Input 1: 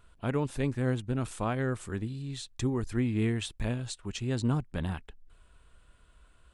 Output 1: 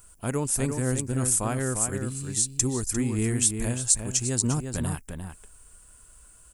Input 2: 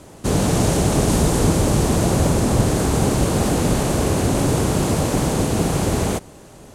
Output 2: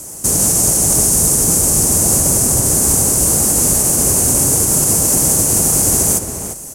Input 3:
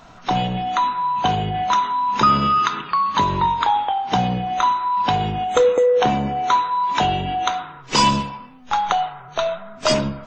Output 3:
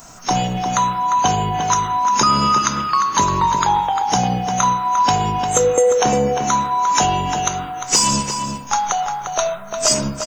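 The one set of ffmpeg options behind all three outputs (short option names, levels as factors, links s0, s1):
-filter_complex "[0:a]aexciter=amount=10.2:drive=6.3:freq=5500,alimiter=limit=0.562:level=0:latency=1:release=182,asplit=2[s0][s1];[s1]adelay=349.9,volume=0.501,highshelf=f=4000:g=-7.87[s2];[s0][s2]amix=inputs=2:normalize=0,volume=1.19"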